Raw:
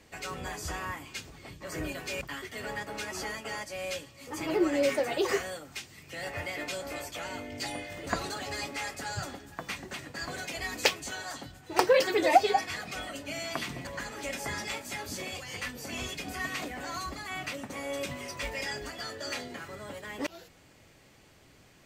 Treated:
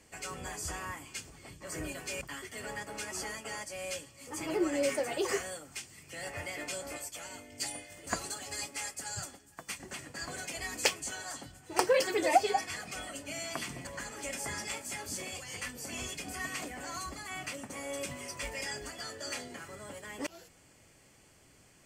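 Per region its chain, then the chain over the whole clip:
6.97–9.8 high shelf 3900 Hz +7.5 dB + upward expander, over -47 dBFS
whole clip: bell 8600 Hz +9.5 dB 0.83 oct; notch 3800 Hz, Q 7.7; gain -4 dB

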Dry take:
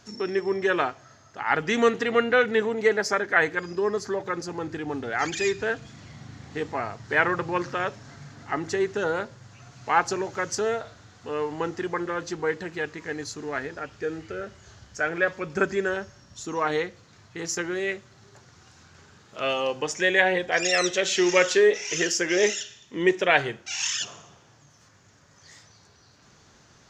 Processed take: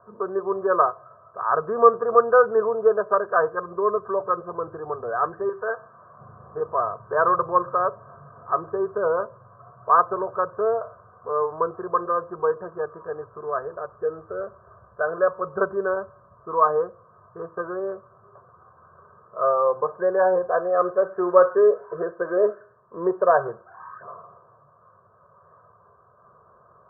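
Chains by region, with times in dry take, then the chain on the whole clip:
5.49–6.19 tilt +3.5 dB/oct + de-hum 129.7 Hz, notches 34
whole clip: steep low-pass 1400 Hz 96 dB/oct; tilt +4.5 dB/oct; comb 1.8 ms, depth 98%; gain +5 dB

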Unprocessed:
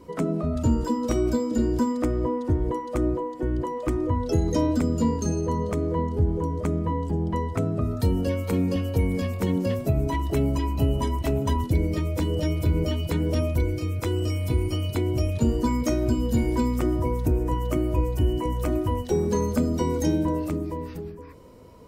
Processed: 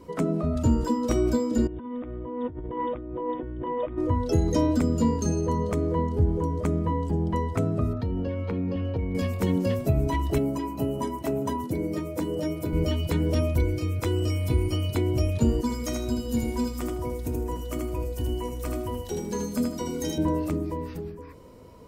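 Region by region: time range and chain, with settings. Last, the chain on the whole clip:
1.67–3.98 negative-ratio compressor -33 dBFS + brick-wall FIR low-pass 3800 Hz
7.93–9.15 compressor 4:1, threshold -24 dBFS + air absorption 290 m
10.38–12.73 HPF 180 Hz + bell 3300 Hz -7.5 dB 1.7 oct
15.61–20.18 high shelf 2100 Hz +7.5 dB + resonator 240 Hz, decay 0.18 s, mix 70% + feedback echo 79 ms, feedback 25%, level -3.5 dB
whole clip: dry

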